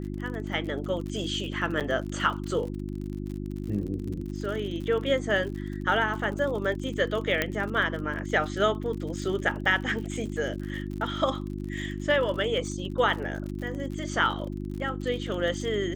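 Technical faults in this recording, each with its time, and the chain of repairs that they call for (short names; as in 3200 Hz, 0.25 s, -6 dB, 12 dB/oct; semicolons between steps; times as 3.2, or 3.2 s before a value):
crackle 52/s -35 dBFS
hum 50 Hz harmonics 7 -34 dBFS
1.8–1.81 gap 7.7 ms
7.42 pop -10 dBFS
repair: de-click; de-hum 50 Hz, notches 7; interpolate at 1.8, 7.7 ms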